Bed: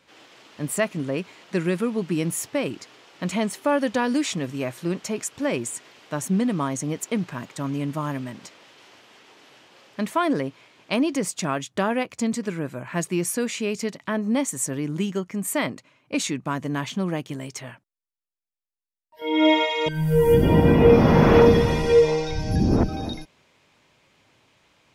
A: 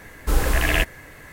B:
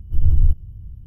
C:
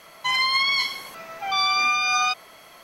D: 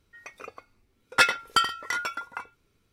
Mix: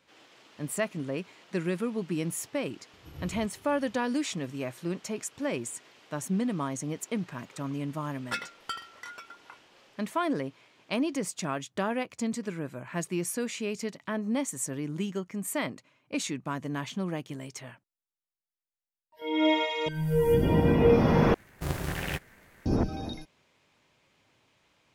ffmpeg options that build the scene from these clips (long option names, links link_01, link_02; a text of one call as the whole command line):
ffmpeg -i bed.wav -i cue0.wav -i cue1.wav -i cue2.wav -i cue3.wav -filter_complex "[0:a]volume=-6.5dB[link_01];[2:a]highpass=340[link_02];[1:a]aeval=exprs='val(0)*sgn(sin(2*PI*110*n/s))':channel_layout=same[link_03];[link_01]asplit=2[link_04][link_05];[link_04]atrim=end=21.344[link_06];[link_03]atrim=end=1.32,asetpts=PTS-STARTPTS,volume=-14dB[link_07];[link_05]atrim=start=22.656[link_08];[link_02]atrim=end=1.06,asetpts=PTS-STARTPTS,volume=-0.5dB,afade=type=in:duration=0.004:curve=hsin,afade=type=out:start_time=1.056:duration=0.004:curve=hsin,adelay=2930[link_09];[4:a]atrim=end=2.92,asetpts=PTS-STARTPTS,volume=-14dB,afade=type=in:duration=0.004:curve=hsin,afade=type=out:start_time=2.916:duration=0.004:curve=hsin,adelay=7130[link_10];[link_06][link_07]acrossfade=duration=0.004:curve1=hsin:curve2=hsin[link_11];[link_11][link_08]acrossfade=duration=0.004:curve1=hsin:curve2=hsin[link_12];[link_12][link_09][link_10]amix=inputs=3:normalize=0" out.wav